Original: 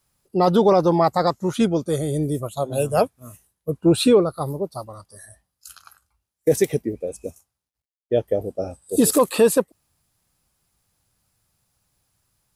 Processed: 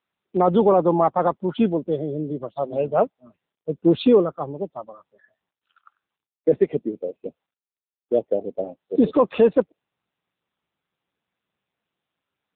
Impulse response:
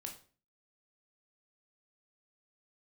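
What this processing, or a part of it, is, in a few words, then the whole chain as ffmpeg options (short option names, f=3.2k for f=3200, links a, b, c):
mobile call with aggressive noise cancelling: -af "highpass=f=170:w=0.5412,highpass=f=170:w=1.3066,afftdn=nr=14:nf=-36" -ar 8000 -c:a libopencore_amrnb -b:a 7950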